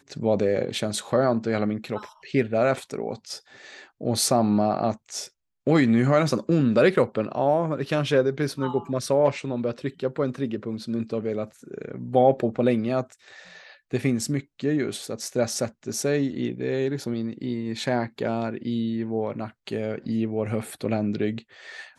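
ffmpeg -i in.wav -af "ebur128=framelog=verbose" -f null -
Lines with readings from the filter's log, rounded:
Integrated loudness:
  I:         -25.2 LUFS
  Threshold: -35.6 LUFS
Loudness range:
  LRA:         6.2 LU
  Threshold: -45.5 LUFS
  LRA low:   -28.4 LUFS
  LRA high:  -22.2 LUFS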